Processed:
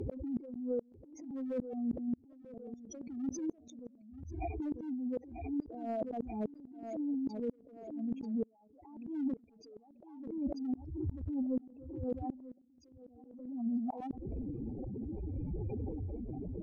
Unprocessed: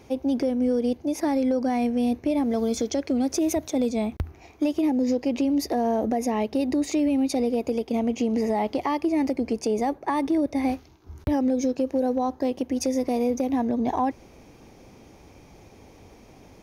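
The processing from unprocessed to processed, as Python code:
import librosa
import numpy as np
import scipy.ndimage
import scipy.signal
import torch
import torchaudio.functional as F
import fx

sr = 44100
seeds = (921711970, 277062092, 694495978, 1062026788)

p1 = fx.spec_expand(x, sr, power=3.8)
p2 = fx.env_lowpass_down(p1, sr, base_hz=1600.0, full_db=-22.5)
p3 = p2 * (1.0 - 0.36 / 2.0 + 0.36 / 2.0 * np.cos(2.0 * np.pi * 0.64 * (np.arange(len(p2)) / sr)))
p4 = np.clip(p3, -10.0 ** (-20.5 / 20.0), 10.0 ** (-20.5 / 20.0))
p5 = fx.over_compress(p4, sr, threshold_db=-33.0, ratio=-0.5)
p6 = fx.gate_flip(p5, sr, shuts_db=-30.0, range_db=-39)
p7 = p6 + fx.echo_feedback(p6, sr, ms=939, feedback_pct=21, wet_db=-19, dry=0)
p8 = fx.pre_swell(p7, sr, db_per_s=59.0)
y = p8 * librosa.db_to_amplitude(4.5)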